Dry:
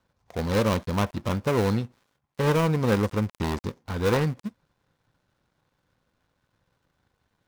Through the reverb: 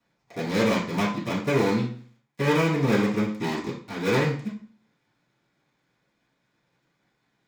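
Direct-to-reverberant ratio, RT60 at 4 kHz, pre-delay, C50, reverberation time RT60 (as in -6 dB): -10.5 dB, 0.40 s, 3 ms, 6.5 dB, 0.45 s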